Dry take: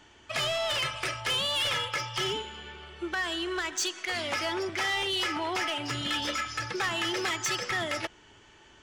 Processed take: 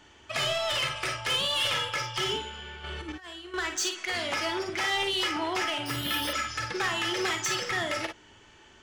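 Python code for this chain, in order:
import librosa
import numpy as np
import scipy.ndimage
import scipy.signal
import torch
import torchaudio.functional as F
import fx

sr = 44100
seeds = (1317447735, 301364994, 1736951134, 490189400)

y = fx.over_compress(x, sr, threshold_db=-39.0, ratio=-0.5, at=(2.84, 3.54))
y = fx.room_early_taps(y, sr, ms=(43, 56), db=(-9.0, -8.5))
y = fx.resample_bad(y, sr, factor=3, down='filtered', up='hold', at=(5.86, 6.33))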